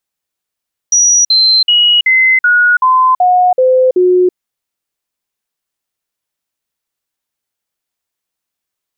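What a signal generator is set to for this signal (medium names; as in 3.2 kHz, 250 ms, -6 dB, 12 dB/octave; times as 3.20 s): stepped sine 5.81 kHz down, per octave 2, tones 9, 0.33 s, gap 0.05 s -5.5 dBFS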